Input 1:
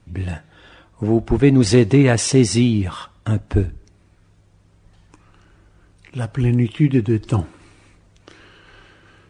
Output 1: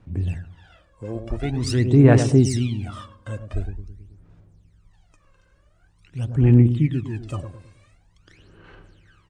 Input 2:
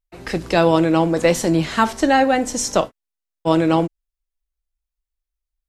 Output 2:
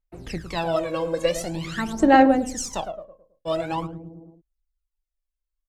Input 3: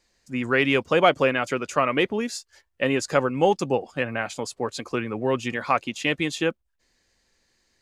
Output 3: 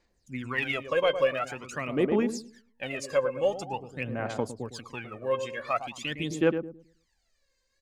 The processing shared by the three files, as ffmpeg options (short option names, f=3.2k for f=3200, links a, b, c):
-filter_complex "[0:a]asplit=2[a][b];[b]adelay=108,lowpass=f=890:p=1,volume=-7.5dB,asplit=2[c][d];[d]adelay=108,lowpass=f=890:p=1,volume=0.47,asplit=2[e][f];[f]adelay=108,lowpass=f=890:p=1,volume=0.47,asplit=2[g][h];[h]adelay=108,lowpass=f=890:p=1,volume=0.47,asplit=2[i][j];[j]adelay=108,lowpass=f=890:p=1,volume=0.47[k];[a][c][e][g][i][k]amix=inputs=6:normalize=0,aphaser=in_gain=1:out_gain=1:delay=1.9:decay=0.78:speed=0.46:type=sinusoidal,volume=-11.5dB"